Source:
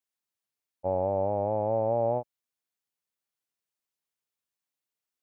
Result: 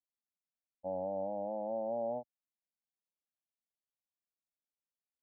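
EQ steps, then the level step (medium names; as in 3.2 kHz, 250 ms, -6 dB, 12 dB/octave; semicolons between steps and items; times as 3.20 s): Bessel low-pass 650 Hz, order 2; static phaser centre 400 Hz, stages 6; -5.5 dB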